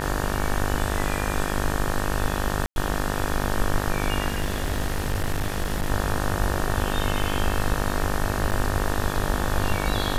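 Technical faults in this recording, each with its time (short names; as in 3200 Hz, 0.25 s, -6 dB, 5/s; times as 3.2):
buzz 50 Hz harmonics 37 -28 dBFS
2.66–2.76 gap 0.101 s
4.28–5.9 clipped -20 dBFS
8.51–8.52 gap 7.1 ms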